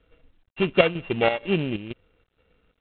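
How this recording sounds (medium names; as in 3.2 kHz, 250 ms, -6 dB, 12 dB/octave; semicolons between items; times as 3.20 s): a buzz of ramps at a fixed pitch in blocks of 16 samples; chopped level 2.1 Hz, depth 65%, duty 70%; G.726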